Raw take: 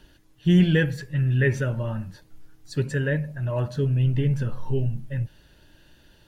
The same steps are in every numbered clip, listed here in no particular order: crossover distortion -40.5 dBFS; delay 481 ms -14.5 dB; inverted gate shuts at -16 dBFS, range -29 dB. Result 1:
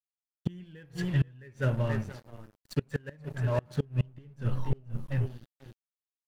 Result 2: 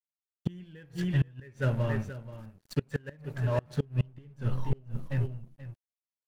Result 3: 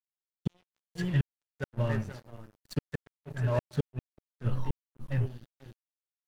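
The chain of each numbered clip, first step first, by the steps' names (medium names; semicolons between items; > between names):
delay > crossover distortion > inverted gate; crossover distortion > delay > inverted gate; delay > inverted gate > crossover distortion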